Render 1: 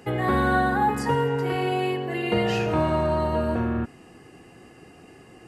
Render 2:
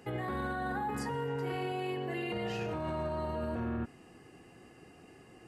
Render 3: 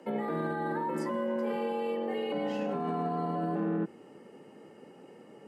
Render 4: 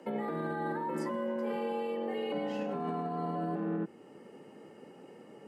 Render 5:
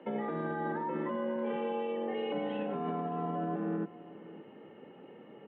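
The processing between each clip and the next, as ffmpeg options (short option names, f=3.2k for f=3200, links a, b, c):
-af "alimiter=limit=-21dB:level=0:latency=1:release=32,volume=-7dB"
-af "tiltshelf=f=1.1k:g=5,afreqshift=92"
-af "alimiter=level_in=1.5dB:limit=-24dB:level=0:latency=1:release=428,volume=-1.5dB"
-af "aecho=1:1:575:0.119,aresample=8000,aresample=44100"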